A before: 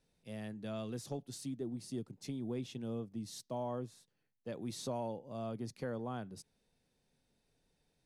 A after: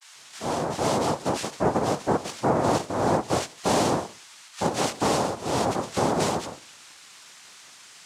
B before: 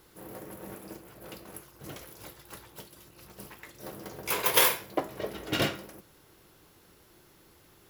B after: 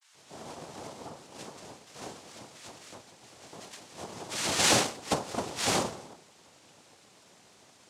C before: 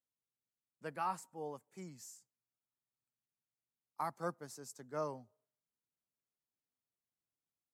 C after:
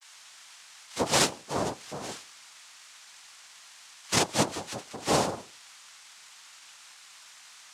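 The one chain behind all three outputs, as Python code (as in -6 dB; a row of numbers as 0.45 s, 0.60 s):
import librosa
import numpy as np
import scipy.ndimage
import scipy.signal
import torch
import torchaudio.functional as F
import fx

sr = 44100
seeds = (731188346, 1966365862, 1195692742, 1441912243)

y = fx.octave_divider(x, sr, octaves=1, level_db=0.0)
y = fx.transient(y, sr, attack_db=6, sustain_db=1)
y = fx.low_shelf(y, sr, hz=130.0, db=-6.5)
y = fx.hum_notches(y, sr, base_hz=50, count=7)
y = fx.notch_comb(y, sr, f0_hz=180.0)
y = fx.dmg_noise_colour(y, sr, seeds[0], colour='violet', level_db=-53.0)
y = fx.transient(y, sr, attack_db=-5, sustain_db=1)
y = fx.dispersion(y, sr, late='lows', ms=146.0, hz=2800.0)
y = fx.noise_vocoder(y, sr, seeds[1], bands=2)
y = y * 10.0 ** (-9 / 20.0) / np.max(np.abs(y))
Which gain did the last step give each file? +17.0 dB, +2.0 dB, +14.5 dB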